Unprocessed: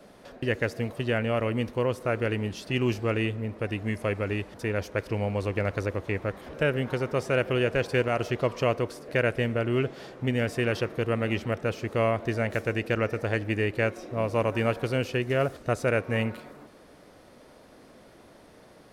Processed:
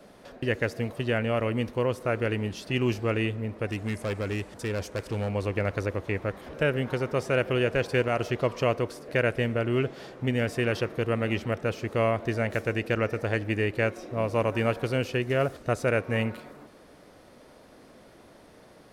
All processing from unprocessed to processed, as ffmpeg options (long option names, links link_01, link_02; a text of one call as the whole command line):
ffmpeg -i in.wav -filter_complex "[0:a]asettb=1/sr,asplit=3[link_01][link_02][link_03];[link_01]atrim=end=3.684[link_04];[link_02]atrim=start=3.68:end=5.29,asetpts=PTS-STARTPTS,afade=type=in:duration=0.004:curve=qsin,afade=type=out:start_time=1.606:duration=0.004:curve=qsin,equalizer=frequency=8000:width_type=o:width=0.71:gain=7.5,asoftclip=type=hard:threshold=-25.5dB[link_05];[link_03]atrim=start=5.286[link_06];[link_04][link_05]acrossfade=duration=0.004:curve1=hsin:curve2=qsin[link_07];[link_07][link_06]acrossfade=duration=0.004:curve1=qsin:curve2=hsin" out.wav